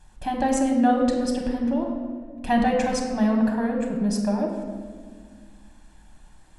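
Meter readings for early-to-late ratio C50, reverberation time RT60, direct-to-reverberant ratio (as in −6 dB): 3.5 dB, 1.7 s, 0.5 dB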